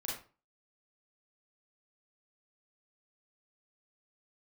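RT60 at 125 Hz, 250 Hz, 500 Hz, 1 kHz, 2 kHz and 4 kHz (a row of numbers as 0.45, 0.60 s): 0.45, 0.40, 0.35, 0.35, 0.30, 0.25 s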